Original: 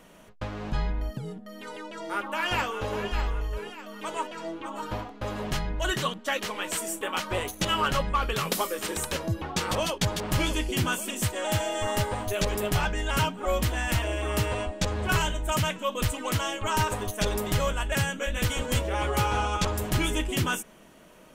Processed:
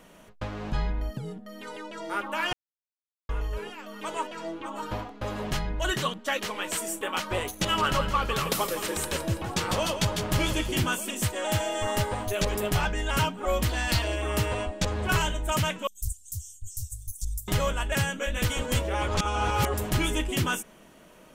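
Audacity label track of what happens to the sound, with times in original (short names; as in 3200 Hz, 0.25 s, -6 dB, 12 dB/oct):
2.530000	3.290000	mute
7.520000	10.850000	feedback echo 0.165 s, feedback 44%, level -9.5 dB
13.690000	14.160000	bell 4400 Hz +14 dB 0.41 oct
15.870000	17.480000	inverse Chebyshev band-stop 320–1900 Hz, stop band 70 dB
19.080000	19.740000	reverse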